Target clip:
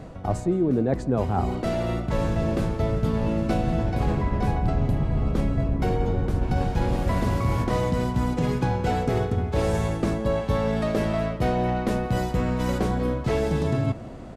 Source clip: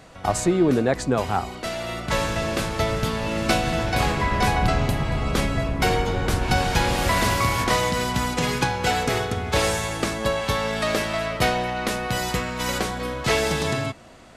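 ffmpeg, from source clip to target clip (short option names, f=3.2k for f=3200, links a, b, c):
-filter_complex "[0:a]tiltshelf=f=890:g=9.5,areverse,acompressor=threshold=-24dB:ratio=5,areverse,asplit=2[a][b];[b]adelay=169.1,volume=-20dB,highshelf=f=4k:g=-3.8[c];[a][c]amix=inputs=2:normalize=0,volume=3dB"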